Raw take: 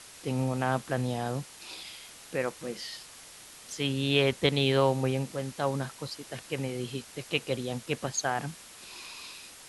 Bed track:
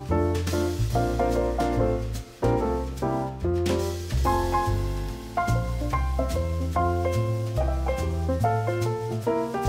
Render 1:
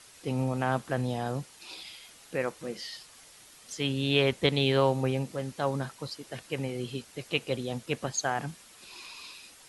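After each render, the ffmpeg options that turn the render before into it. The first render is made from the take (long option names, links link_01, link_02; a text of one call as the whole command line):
ffmpeg -i in.wav -af "afftdn=noise_reduction=6:noise_floor=-50" out.wav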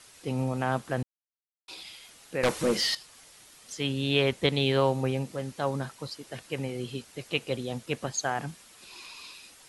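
ffmpeg -i in.wav -filter_complex "[0:a]asettb=1/sr,asplit=3[link_01][link_02][link_03];[link_01]atrim=end=2.434[link_04];[link_02]atrim=start=2.43:end=2.95,asetpts=PTS-STARTPTS,afade=type=in:duration=0.004:curve=qsin,afade=type=out:start_time=0.516:duration=0.004:curve=qsin,aeval=exprs='0.119*sin(PI/2*3.16*val(0)/0.119)':channel_layout=same[link_05];[link_03]atrim=start=2.946[link_06];[link_04][link_05]acrossfade=duration=0.004:curve1=hsin:curve2=qsin[link_07];[link_07][link_06]acrossfade=duration=0.004:curve1=qsin:curve2=hsin,asplit=3[link_08][link_09][link_10];[link_08]atrim=end=1.03,asetpts=PTS-STARTPTS,afade=type=out:start_time=1.026:duration=0.004:curve=hsin[link_11];[link_09]atrim=start=1.03:end=1.68,asetpts=PTS-STARTPTS,volume=0[link_12];[link_10]atrim=start=1.68,asetpts=PTS-STARTPTS,afade=type=in:duration=0.004:curve=hsin[link_13];[link_11][link_12][link_13]concat=n=3:v=0:a=1" out.wav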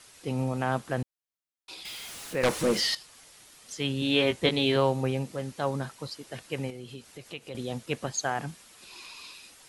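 ffmpeg -i in.wav -filter_complex "[0:a]asettb=1/sr,asplit=3[link_01][link_02][link_03];[link_01]atrim=end=1.854[link_04];[link_02]atrim=start=1.85:end=2.8,asetpts=PTS-STARTPTS,afade=type=in:duration=0.004:curve=qsin,afade=type=out:start_time=0.946:duration=0.004:curve=qsin,aeval=exprs='val(0)+0.5*0.0119*sgn(val(0))':channel_layout=same[link_05];[link_03]atrim=start=2.796[link_06];[link_04][link_05]acrossfade=duration=0.004:curve1=hsin:curve2=qsin[link_07];[link_07][link_06]acrossfade=duration=0.004:curve1=qsin:curve2=hsin,asettb=1/sr,asplit=3[link_08][link_09][link_10];[link_08]atrim=end=4.004[link_11];[link_09]atrim=start=4:end=4.76,asetpts=PTS-STARTPTS,afade=type=in:duration=0.004:curve=qsin,afade=type=out:start_time=0.756:duration=0.004:curve=qsin,asplit=2[link_12][link_13];[link_13]adelay=18,volume=-5dB[link_14];[link_12][link_14]amix=inputs=2:normalize=0,atrim=end_sample=33516[link_15];[link_10]atrim=start=4.756[link_16];[link_11][link_15]acrossfade=duration=0.004:curve1=hsin:curve2=qsin[link_17];[link_17][link_16]acrossfade=duration=0.004:curve1=qsin:curve2=hsin,asettb=1/sr,asplit=3[link_18][link_19][link_20];[link_18]atrim=end=6.704[link_21];[link_19]atrim=start=6.7:end=7.55,asetpts=PTS-STARTPTS,afade=type=in:duration=0.004:curve=qsin,afade=type=out:start_time=0.846:duration=0.004:curve=qsin,acompressor=threshold=-43dB:ratio=2:attack=3.2:release=140:knee=1:detection=peak[link_22];[link_20]atrim=start=7.546[link_23];[link_21][link_22]acrossfade=duration=0.004:curve1=hsin:curve2=qsin[link_24];[link_24][link_23]acrossfade=duration=0.004:curve1=qsin:curve2=hsin" out.wav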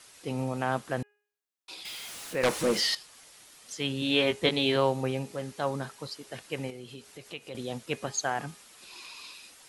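ffmpeg -i in.wav -af "lowshelf=frequency=180:gain=-6,bandreject=frequency=413.5:width_type=h:width=4,bandreject=frequency=827:width_type=h:width=4,bandreject=frequency=1240.5:width_type=h:width=4,bandreject=frequency=1654:width_type=h:width=4,bandreject=frequency=2067.5:width_type=h:width=4,bandreject=frequency=2481:width_type=h:width=4,bandreject=frequency=2894.5:width_type=h:width=4,bandreject=frequency=3308:width_type=h:width=4" out.wav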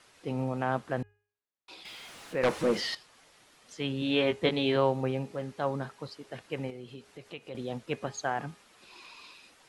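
ffmpeg -i in.wav -af "lowpass=frequency=2100:poles=1,bandreject=frequency=50:width_type=h:width=6,bandreject=frequency=100:width_type=h:width=6" out.wav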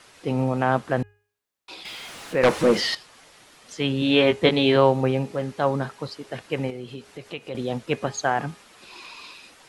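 ffmpeg -i in.wav -af "volume=8.5dB" out.wav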